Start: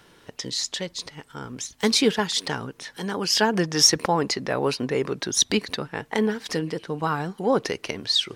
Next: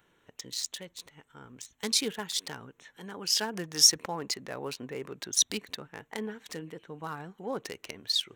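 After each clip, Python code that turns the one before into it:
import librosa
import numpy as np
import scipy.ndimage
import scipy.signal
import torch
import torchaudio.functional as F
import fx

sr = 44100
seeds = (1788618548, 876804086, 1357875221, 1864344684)

y = fx.wiener(x, sr, points=9)
y = librosa.effects.preemphasis(y, coef=0.8, zi=[0.0])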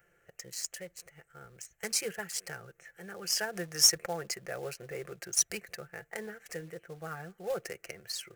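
y = fx.fixed_phaser(x, sr, hz=980.0, stages=6)
y = y + 0.38 * np.pad(y, (int(5.8 * sr / 1000.0), 0))[:len(y)]
y = fx.quant_float(y, sr, bits=2)
y = y * 10.0 ** (1.5 / 20.0)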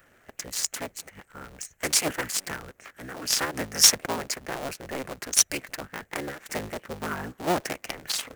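y = fx.cycle_switch(x, sr, every=3, mode='inverted')
y = fx.rider(y, sr, range_db=5, speed_s=2.0)
y = y * 10.0 ** (4.0 / 20.0)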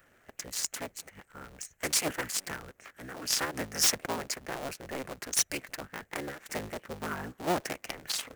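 y = 10.0 ** (-13.5 / 20.0) * (np.abs((x / 10.0 ** (-13.5 / 20.0) + 3.0) % 4.0 - 2.0) - 1.0)
y = y * 10.0 ** (-4.0 / 20.0)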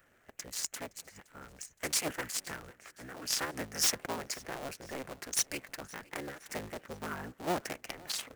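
y = fx.echo_feedback(x, sr, ms=517, feedback_pct=50, wet_db=-23)
y = y * 10.0 ** (-3.5 / 20.0)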